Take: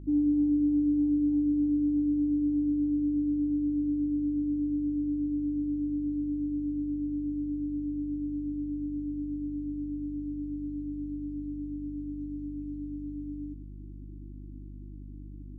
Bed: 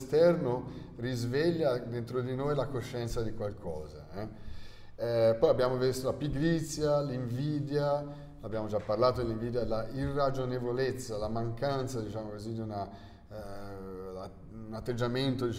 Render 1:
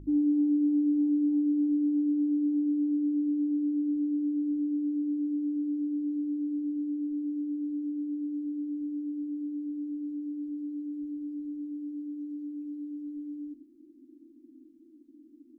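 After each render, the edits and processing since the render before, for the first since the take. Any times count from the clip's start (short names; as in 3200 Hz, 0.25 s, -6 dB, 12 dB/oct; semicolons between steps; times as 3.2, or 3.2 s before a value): de-hum 50 Hz, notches 5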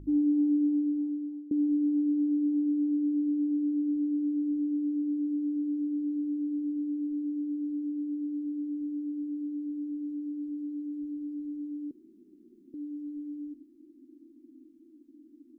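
0.6–1.51 fade out, to -22.5 dB; 11.91–12.74 room tone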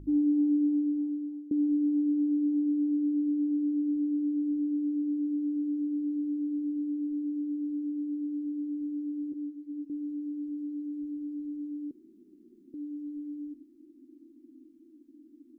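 9.32–9.9 ensemble effect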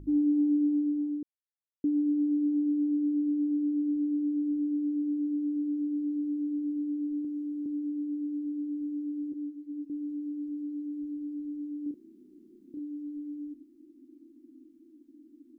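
1.23–1.84 mute; 7.22–7.66 doubler 26 ms -2.5 dB; 11.83–12.79 doubler 31 ms -3 dB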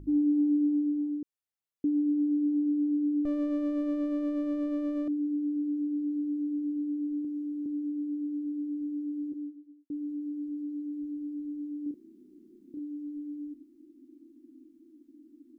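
3.25–5.08 minimum comb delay 0.62 ms; 9.27–9.9 studio fade out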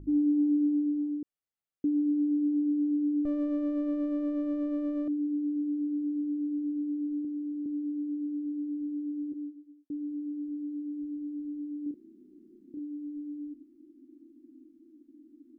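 high shelf 2100 Hz -8 dB; notch 1000 Hz, Q 10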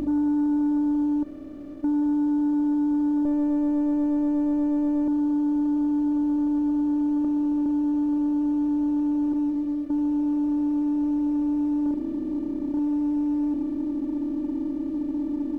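per-bin compression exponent 0.2; sample leveller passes 1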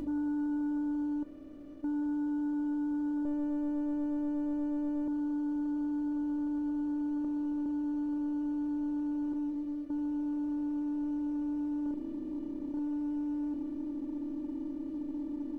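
resonator 490 Hz, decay 0.2 s, harmonics all, mix 70%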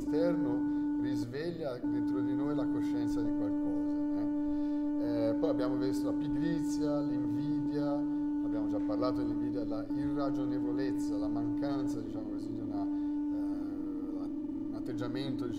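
add bed -8.5 dB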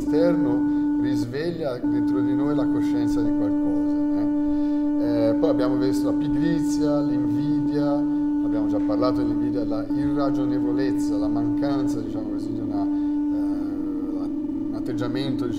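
gain +10.5 dB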